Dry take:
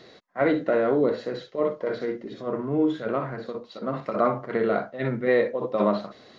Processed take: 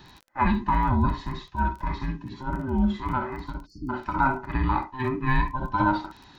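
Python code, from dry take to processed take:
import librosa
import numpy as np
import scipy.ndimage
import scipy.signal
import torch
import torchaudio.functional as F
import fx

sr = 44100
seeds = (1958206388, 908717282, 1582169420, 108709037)

y = fx.band_invert(x, sr, width_hz=500)
y = fx.dmg_crackle(y, sr, seeds[0], per_s=15.0, level_db=-37.0)
y = fx.spec_erase(y, sr, start_s=3.66, length_s=0.24, low_hz=490.0, high_hz=4300.0)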